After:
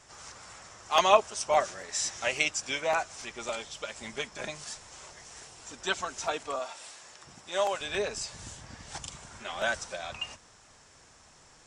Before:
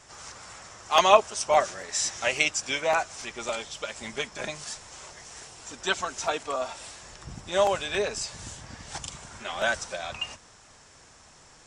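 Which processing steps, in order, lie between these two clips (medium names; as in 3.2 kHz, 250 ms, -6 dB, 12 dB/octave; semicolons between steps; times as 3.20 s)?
6.59–7.81 s: high-pass 500 Hz 6 dB/octave; trim -3.5 dB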